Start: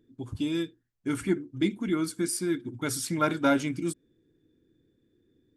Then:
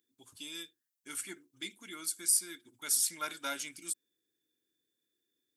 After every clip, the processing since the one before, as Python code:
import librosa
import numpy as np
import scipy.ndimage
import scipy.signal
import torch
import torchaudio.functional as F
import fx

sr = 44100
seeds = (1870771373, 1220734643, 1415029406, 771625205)

y = np.diff(x, prepend=0.0)
y = y * librosa.db_to_amplitude(4.0)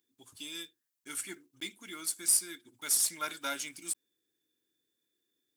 y = fx.block_float(x, sr, bits=5)
y = y * librosa.db_to_amplitude(1.5)